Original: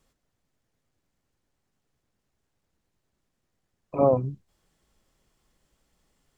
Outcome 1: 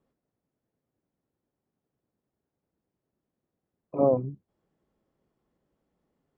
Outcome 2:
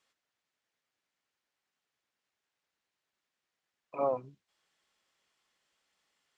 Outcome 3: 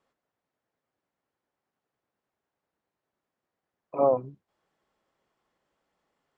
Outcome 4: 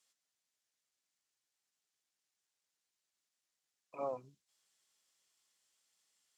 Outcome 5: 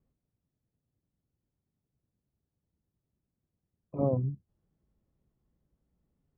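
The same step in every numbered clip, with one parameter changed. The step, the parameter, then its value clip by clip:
band-pass filter, frequency: 320 Hz, 2.6 kHz, 890 Hz, 6.7 kHz, 110 Hz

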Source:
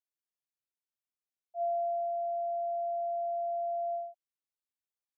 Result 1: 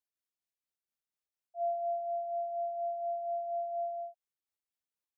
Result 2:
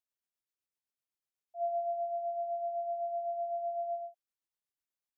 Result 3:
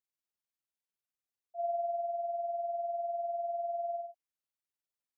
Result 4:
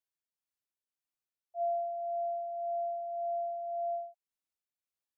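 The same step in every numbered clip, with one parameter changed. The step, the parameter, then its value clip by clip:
tremolo, rate: 4.2 Hz, 7.9 Hz, 20 Hz, 1.8 Hz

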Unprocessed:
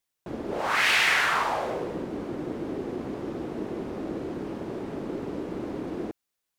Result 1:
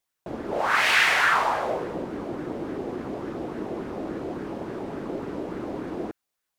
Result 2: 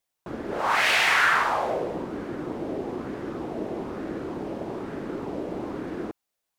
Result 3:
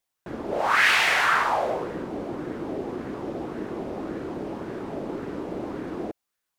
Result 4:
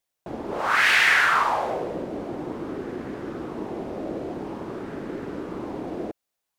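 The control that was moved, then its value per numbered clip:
sweeping bell, rate: 3.5 Hz, 1.1 Hz, 1.8 Hz, 0.49 Hz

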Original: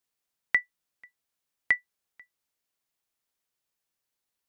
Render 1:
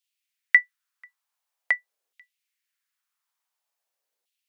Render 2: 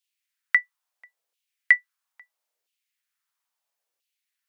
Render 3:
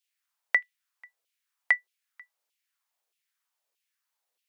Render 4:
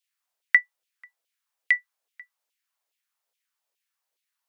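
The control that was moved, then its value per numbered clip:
LFO high-pass, rate: 0.47 Hz, 0.75 Hz, 1.6 Hz, 2.4 Hz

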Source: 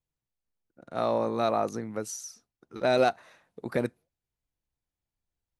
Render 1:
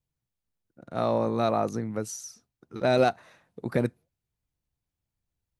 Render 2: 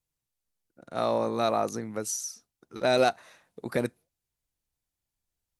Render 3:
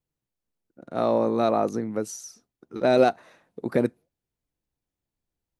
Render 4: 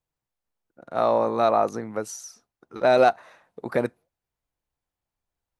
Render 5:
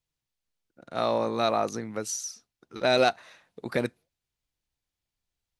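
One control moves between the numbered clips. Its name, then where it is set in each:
peaking EQ, frequency: 110 Hz, 11 kHz, 290 Hz, 880 Hz, 3.9 kHz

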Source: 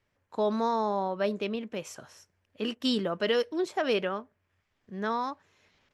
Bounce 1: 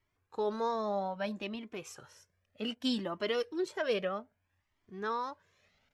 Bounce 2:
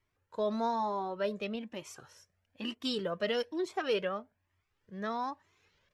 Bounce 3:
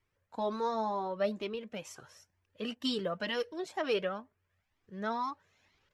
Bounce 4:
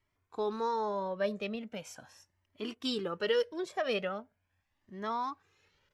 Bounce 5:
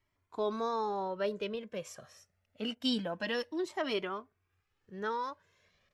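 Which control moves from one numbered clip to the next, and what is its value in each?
Shepard-style flanger, rate: 0.63 Hz, 1.1 Hz, 2.1 Hz, 0.4 Hz, 0.26 Hz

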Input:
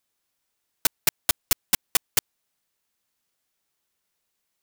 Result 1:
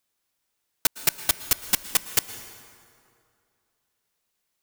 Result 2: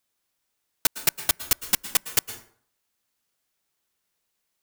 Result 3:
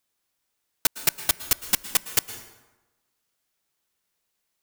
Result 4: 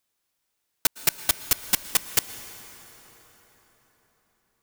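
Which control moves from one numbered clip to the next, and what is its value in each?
plate-style reverb, RT60: 2.4 s, 0.54 s, 1.1 s, 4.9 s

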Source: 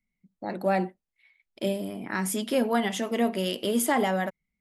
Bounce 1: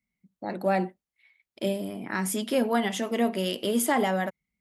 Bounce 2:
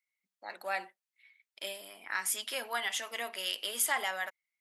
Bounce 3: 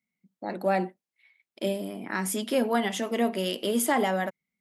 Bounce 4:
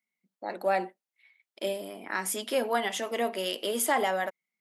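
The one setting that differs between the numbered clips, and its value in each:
high-pass, cutoff frequency: 47 Hz, 1.3 kHz, 170 Hz, 430 Hz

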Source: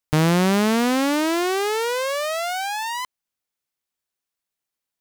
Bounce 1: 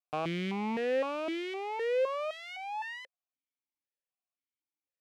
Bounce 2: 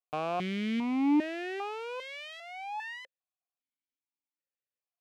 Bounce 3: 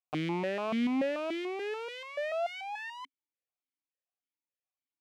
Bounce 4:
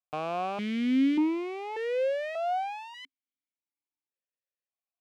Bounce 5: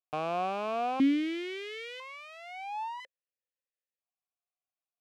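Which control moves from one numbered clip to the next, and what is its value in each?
stepped vowel filter, rate: 3.9 Hz, 2.5 Hz, 6.9 Hz, 1.7 Hz, 1 Hz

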